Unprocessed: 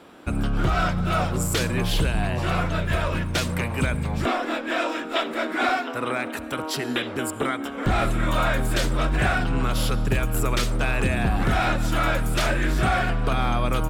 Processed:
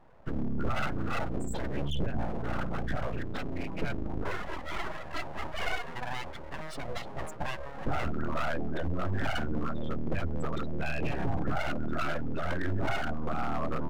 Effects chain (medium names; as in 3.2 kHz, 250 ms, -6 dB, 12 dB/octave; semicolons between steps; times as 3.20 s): loudest bins only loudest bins 16; full-wave rectifier; trim -5 dB